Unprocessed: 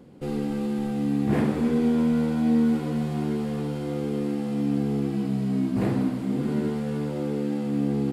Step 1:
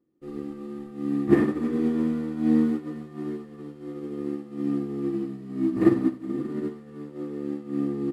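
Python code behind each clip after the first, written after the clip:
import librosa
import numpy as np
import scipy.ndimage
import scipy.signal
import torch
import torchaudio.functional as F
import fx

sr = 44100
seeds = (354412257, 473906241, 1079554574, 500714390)

y = fx.small_body(x, sr, hz=(330.0, 1200.0, 1800.0), ring_ms=55, db=17)
y = fx.upward_expand(y, sr, threshold_db=-32.0, expansion=2.5)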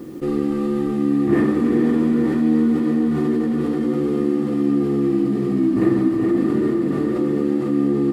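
y = fx.echo_diffused(x, sr, ms=452, feedback_pct=51, wet_db=-8)
y = fx.env_flatten(y, sr, amount_pct=70)
y = y * librosa.db_to_amplitude(-1.0)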